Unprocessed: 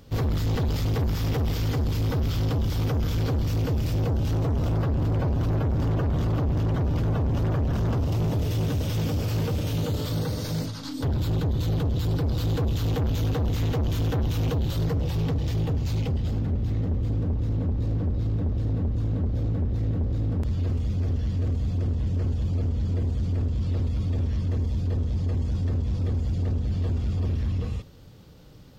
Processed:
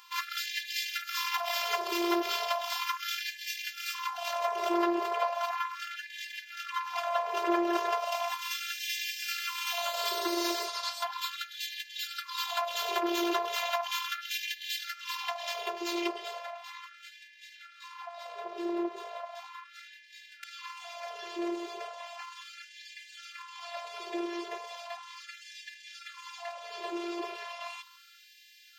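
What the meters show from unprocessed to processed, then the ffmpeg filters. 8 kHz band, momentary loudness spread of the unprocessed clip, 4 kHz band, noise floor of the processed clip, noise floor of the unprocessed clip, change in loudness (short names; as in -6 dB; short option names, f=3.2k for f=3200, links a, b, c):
+4.0 dB, 2 LU, +6.0 dB, -55 dBFS, -31 dBFS, -7.0 dB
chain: -af "afftfilt=real='hypot(re,im)*cos(PI*b)':imag='0':win_size=512:overlap=0.75,equalizer=f=100:t=o:w=0.67:g=-9,equalizer=f=1k:t=o:w=0.67:g=6,equalizer=f=2.5k:t=o:w=0.67:g=5,equalizer=f=10k:t=o:w=0.67:g=-3,afftfilt=real='re*gte(b*sr/1024,330*pow(1600/330,0.5+0.5*sin(2*PI*0.36*pts/sr)))':imag='im*gte(b*sr/1024,330*pow(1600/330,0.5+0.5*sin(2*PI*0.36*pts/sr)))':win_size=1024:overlap=0.75,volume=8dB"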